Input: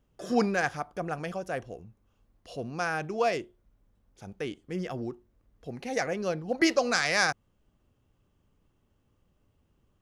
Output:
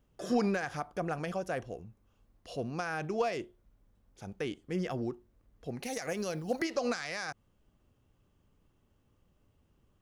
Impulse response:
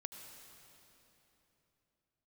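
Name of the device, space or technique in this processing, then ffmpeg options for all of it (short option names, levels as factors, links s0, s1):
de-esser from a sidechain: -filter_complex "[0:a]asettb=1/sr,asplit=3[s0][s1][s2];[s0]atrim=end=5.834[s3];[s1]atrim=start=5.83:end=6.62,asetpts=PTS-STARTPTS,afade=t=in:d=0.004:c=qsin,afade=t=out:st=0.786:d=0.004:c=qsin,aemphasis=mode=production:type=75fm[s4];[s2]atrim=start=6.616[s5];[s3][s4]acrossfade=d=0.004:c1=hsin:c2=qsin[s6];[s6][s5]acrossfade=d=0.004:c1=qsin:c2=hsin,asplit=2[s7][s8];[s8]highpass=f=4400:p=1,apad=whole_len=441559[s9];[s7][s9]sidechaincompress=threshold=0.00891:ratio=4:attack=3.5:release=71"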